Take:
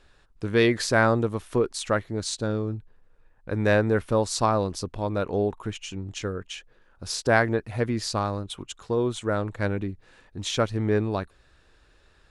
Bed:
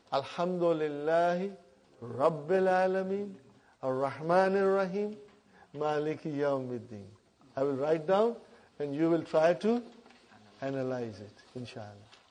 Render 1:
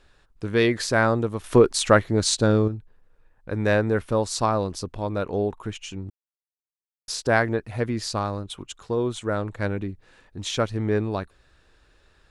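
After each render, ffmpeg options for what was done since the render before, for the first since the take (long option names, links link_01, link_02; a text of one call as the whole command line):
ffmpeg -i in.wav -filter_complex "[0:a]asplit=5[link_01][link_02][link_03][link_04][link_05];[link_01]atrim=end=1.442[link_06];[link_02]atrim=start=1.438:end=2.682,asetpts=PTS-STARTPTS,volume=8dB[link_07];[link_03]atrim=start=2.678:end=6.1,asetpts=PTS-STARTPTS,afade=type=out:start_time=3.418:duration=0.004:curve=hsin[link_08];[link_04]atrim=start=6.1:end=7.08,asetpts=PTS-STARTPTS,volume=0[link_09];[link_05]atrim=start=7.08,asetpts=PTS-STARTPTS,afade=type=in:duration=0.004:curve=hsin[link_10];[link_06][link_07]acrossfade=duration=0.004:curve1=hsin:curve2=hsin[link_11];[link_08][link_09][link_10]concat=n=3:v=0:a=1[link_12];[link_11][link_12]acrossfade=duration=0.004:curve1=hsin:curve2=hsin" out.wav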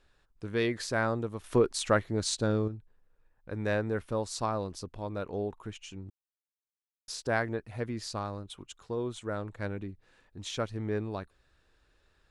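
ffmpeg -i in.wav -af "volume=-9dB" out.wav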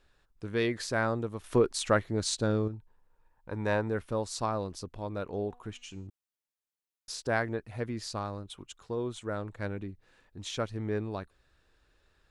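ffmpeg -i in.wav -filter_complex "[0:a]asettb=1/sr,asplit=3[link_01][link_02][link_03];[link_01]atrim=end=2.734[link_04];[link_02]atrim=start=2.73:end=3.88,asetpts=PTS-STARTPTS,afade=type=in:duration=0.004:curve=qsin,afade=type=out:start_time=1.146:duration=0.004:curve=qsin,equalizer=frequency=930:width_type=o:width=0.33:gain=12.5[link_05];[link_03]atrim=start=3.876[link_06];[link_04][link_05]acrossfade=duration=0.004:curve1=hsin:curve2=qsin[link_07];[link_07][link_06]acrossfade=duration=0.004:curve1=qsin:curve2=hsin,asettb=1/sr,asplit=3[link_08][link_09][link_10];[link_08]atrim=end=5.334[link_11];[link_09]atrim=start=5.33:end=6.07,asetpts=PTS-STARTPTS,afade=type=in:duration=0.004:curve=qsin,afade=type=out:start_time=0.736:duration=0.004:curve=qsin,bandreject=frequency=243.9:width_type=h:width=4,bandreject=frequency=487.8:width_type=h:width=4,bandreject=frequency=731.7:width_type=h:width=4,bandreject=frequency=975.6:width_type=h:width=4,bandreject=frequency=1219.5:width_type=h:width=4,bandreject=frequency=1463.4:width_type=h:width=4,bandreject=frequency=1707.3:width_type=h:width=4,bandreject=frequency=1951.2:width_type=h:width=4,bandreject=frequency=2195.1:width_type=h:width=4,bandreject=frequency=2439:width_type=h:width=4,bandreject=frequency=2682.9:width_type=h:width=4,bandreject=frequency=2926.8:width_type=h:width=4,bandreject=frequency=3170.7:width_type=h:width=4,bandreject=frequency=3414.6:width_type=h:width=4,bandreject=frequency=3658.5:width_type=h:width=4,bandreject=frequency=3902.4:width_type=h:width=4,bandreject=frequency=4146.3:width_type=h:width=4,bandreject=frequency=4390.2:width_type=h:width=4,bandreject=frequency=4634.1:width_type=h:width=4,bandreject=frequency=4878:width_type=h:width=4,bandreject=frequency=5121.9:width_type=h:width=4,bandreject=frequency=5365.8:width_type=h:width=4,bandreject=frequency=5609.7:width_type=h:width=4,bandreject=frequency=5853.6:width_type=h:width=4,bandreject=frequency=6097.5:width_type=h:width=4,bandreject=frequency=6341.4:width_type=h:width=4,bandreject=frequency=6585.3:width_type=h:width=4,bandreject=frequency=6829.2:width_type=h:width=4,bandreject=frequency=7073.1:width_type=h:width=4,bandreject=frequency=7317:width_type=h:width=4,bandreject=frequency=7560.9:width_type=h:width=4,bandreject=frequency=7804.8:width_type=h:width=4,bandreject=frequency=8048.7:width_type=h:width=4,bandreject=frequency=8292.6:width_type=h:width=4[link_12];[link_10]atrim=start=6.066[link_13];[link_11][link_12]acrossfade=duration=0.004:curve1=hsin:curve2=qsin[link_14];[link_14][link_13]acrossfade=duration=0.004:curve1=qsin:curve2=hsin" out.wav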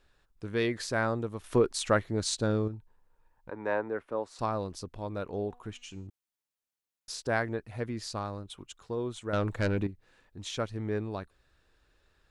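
ffmpeg -i in.wav -filter_complex "[0:a]asettb=1/sr,asplit=3[link_01][link_02][link_03];[link_01]atrim=end=3.504[link_04];[link_02]atrim=start=3.5:end=4.39,asetpts=PTS-STARTPTS,afade=type=in:duration=0.004:curve=qsin,afade=type=out:start_time=0.886:duration=0.004:curve=qsin,acrossover=split=260 2400:gain=0.126 1 0.158[link_05][link_06][link_07];[link_05][link_06][link_07]amix=inputs=3:normalize=0[link_08];[link_03]atrim=start=4.386[link_09];[link_04][link_08]acrossfade=duration=0.004:curve1=hsin:curve2=qsin[link_10];[link_10][link_09]acrossfade=duration=0.004:curve1=qsin:curve2=hsin,asettb=1/sr,asplit=3[link_11][link_12][link_13];[link_11]atrim=end=9.334[link_14];[link_12]atrim=start=9.33:end=9.87,asetpts=PTS-STARTPTS,afade=type=in:duration=0.004:curve=qsin,afade=type=out:start_time=0.536:duration=0.004:curve=qsin,aeval=exprs='0.0794*sin(PI/2*2*val(0)/0.0794)':channel_layout=same[link_15];[link_13]atrim=start=9.866[link_16];[link_14][link_15]acrossfade=duration=0.004:curve1=hsin:curve2=qsin[link_17];[link_17][link_16]acrossfade=duration=0.004:curve1=qsin:curve2=hsin" out.wav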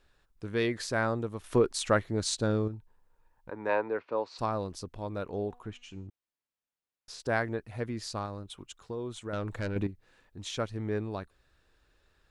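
ffmpeg -i in.wav -filter_complex "[0:a]asettb=1/sr,asplit=3[link_01][link_02][link_03];[link_01]atrim=end=3.694[link_04];[link_02]atrim=start=3.69:end=4.38,asetpts=PTS-STARTPTS,afade=type=in:duration=0.004:curve=qsin,afade=type=out:start_time=0.686:duration=0.004:curve=qsin,highpass=110,equalizer=frequency=200:width_type=q:width=4:gain=-3,equalizer=frequency=480:width_type=q:width=4:gain=3,equalizer=frequency=960:width_type=q:width=4:gain=5,equalizer=frequency=2500:width_type=q:width=4:gain=8,equalizer=frequency=4400:width_type=q:width=4:gain=9,lowpass=frequency=5700:width=0.5412,lowpass=frequency=5700:width=1.3066[link_05];[link_03]atrim=start=4.376[link_06];[link_04][link_05]acrossfade=duration=0.004:curve1=hsin:curve2=qsin[link_07];[link_07][link_06]acrossfade=duration=0.004:curve1=qsin:curve2=hsin,asettb=1/sr,asplit=3[link_08][link_09][link_10];[link_08]atrim=end=5.634[link_11];[link_09]atrim=start=5.63:end=7.2,asetpts=PTS-STARTPTS,afade=type=in:duration=0.004:curve=qsin,afade=type=out:start_time=1.566:duration=0.004:curve=qsin,lowpass=frequency=3000:poles=1[link_12];[link_10]atrim=start=7.196[link_13];[link_11][link_12]acrossfade=duration=0.004:curve1=hsin:curve2=qsin[link_14];[link_14][link_13]acrossfade=duration=0.004:curve1=qsin:curve2=hsin,asettb=1/sr,asplit=3[link_15][link_16][link_17];[link_15]atrim=end=8.254[link_18];[link_16]atrim=start=8.25:end=9.76,asetpts=PTS-STARTPTS,afade=type=in:duration=0.004:curve=qsin,afade=type=out:start_time=1.506:duration=0.004:curve=qsin,acompressor=threshold=-34dB:ratio=2:attack=3.2:release=140:knee=1:detection=peak[link_19];[link_17]atrim=start=9.756[link_20];[link_18][link_19]acrossfade=duration=0.004:curve1=hsin:curve2=qsin[link_21];[link_21][link_20]acrossfade=duration=0.004:curve1=qsin:curve2=hsin" out.wav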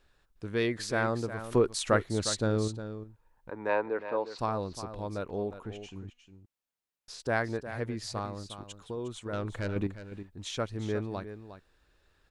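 ffmpeg -i in.wav -af "aecho=1:1:358:0.266" out.wav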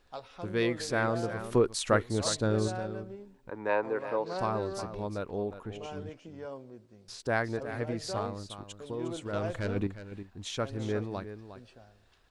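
ffmpeg -i in.wav -i bed.wav -filter_complex "[1:a]volume=-11.5dB[link_01];[0:a][link_01]amix=inputs=2:normalize=0" out.wav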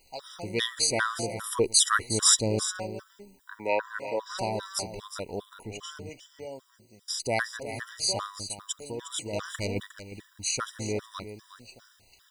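ffmpeg -i in.wav -af "crystalizer=i=8:c=0,afftfilt=real='re*gt(sin(2*PI*2.5*pts/sr)*(1-2*mod(floor(b*sr/1024/980),2)),0)':imag='im*gt(sin(2*PI*2.5*pts/sr)*(1-2*mod(floor(b*sr/1024/980),2)),0)':win_size=1024:overlap=0.75" out.wav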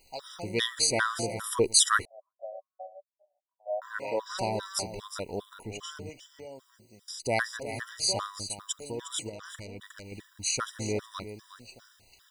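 ffmpeg -i in.wav -filter_complex "[0:a]asettb=1/sr,asplit=3[link_01][link_02][link_03];[link_01]atrim=end=2.054[link_04];[link_02]atrim=start=2.05:end=3.82,asetpts=PTS-STARTPTS,afade=type=in:duration=0.004:curve=qsin,afade=type=out:start_time=1.766:duration=0.004:curve=qsin,asuperpass=centerf=660:order=8:qfactor=3.7[link_05];[link_03]atrim=start=3.816[link_06];[link_04][link_05]acrossfade=duration=0.004:curve1=hsin:curve2=qsin[link_07];[link_07][link_06]acrossfade=duration=0.004:curve1=qsin:curve2=hsin,asettb=1/sr,asplit=3[link_08][link_09][link_10];[link_08]atrim=end=6.104[link_11];[link_09]atrim=start=6.1:end=7.25,asetpts=PTS-STARTPTS,afade=type=in:duration=0.004:curve=qsin,afade=type=out:start_time=1.146:duration=0.004:curve=qsin,acompressor=threshold=-43dB:ratio=2:attack=3.2:release=140:knee=1:detection=peak[link_12];[link_10]atrim=start=7.246[link_13];[link_11][link_12]acrossfade=duration=0.004:curve1=hsin:curve2=qsin[link_14];[link_14][link_13]acrossfade=duration=0.004:curve1=qsin:curve2=hsin,asettb=1/sr,asplit=3[link_15][link_16][link_17];[link_15]atrim=end=9.294[link_18];[link_16]atrim=start=9.29:end=10.1,asetpts=PTS-STARTPTS,afade=type=in:duration=0.004:curve=qsin,afade=type=out:start_time=0.806:duration=0.004:curve=qsin,acompressor=threshold=-40dB:ratio=6:attack=3.2:release=140:knee=1:detection=peak[link_19];[link_17]atrim=start=10.096[link_20];[link_18][link_19]acrossfade=duration=0.004:curve1=hsin:curve2=qsin[link_21];[link_21][link_20]acrossfade=duration=0.004:curve1=qsin:curve2=hsin" out.wav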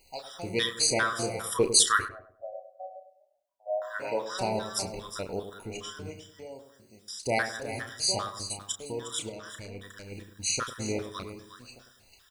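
ffmpeg -i in.wav -filter_complex "[0:a]asplit=2[link_01][link_02];[link_02]adelay=32,volume=-8.5dB[link_03];[link_01][link_03]amix=inputs=2:normalize=0,asplit=2[link_04][link_05];[link_05]adelay=101,lowpass=frequency=1000:poles=1,volume=-9dB,asplit=2[link_06][link_07];[link_07]adelay=101,lowpass=frequency=1000:poles=1,volume=0.41,asplit=2[link_08][link_09];[link_09]adelay=101,lowpass=frequency=1000:poles=1,volume=0.41,asplit=2[link_10][link_11];[link_11]adelay=101,lowpass=frequency=1000:poles=1,volume=0.41,asplit=2[link_12][link_13];[link_13]adelay=101,lowpass=frequency=1000:poles=1,volume=0.41[link_14];[link_04][link_06][link_08][link_10][link_12][link_14]amix=inputs=6:normalize=0" out.wav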